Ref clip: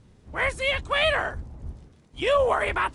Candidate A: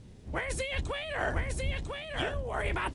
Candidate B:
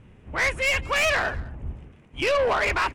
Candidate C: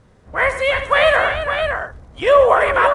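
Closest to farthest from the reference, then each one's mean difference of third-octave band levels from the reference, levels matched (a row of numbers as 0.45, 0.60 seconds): B, C, A; 4.5, 6.0, 10.0 decibels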